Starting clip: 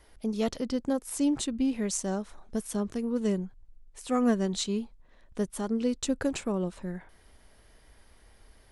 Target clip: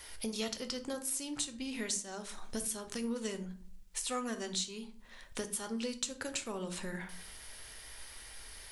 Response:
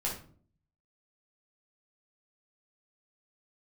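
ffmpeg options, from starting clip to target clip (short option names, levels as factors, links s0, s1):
-filter_complex "[0:a]tiltshelf=f=1200:g=-9.5,acompressor=threshold=0.00708:ratio=6,asplit=2[s0][s1];[1:a]atrim=start_sample=2205[s2];[s1][s2]afir=irnorm=-1:irlink=0,volume=0.422[s3];[s0][s3]amix=inputs=2:normalize=0,volume=1.68"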